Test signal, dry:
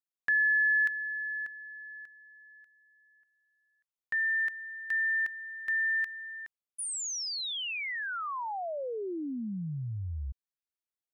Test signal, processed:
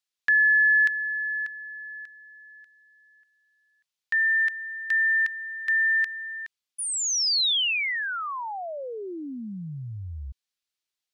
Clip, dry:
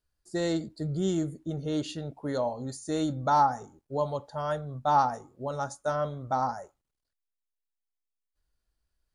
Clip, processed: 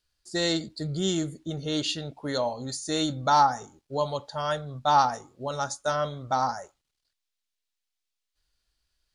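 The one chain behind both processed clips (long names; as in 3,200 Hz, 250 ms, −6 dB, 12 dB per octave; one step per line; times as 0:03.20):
parametric band 4,000 Hz +12.5 dB 2.4 octaves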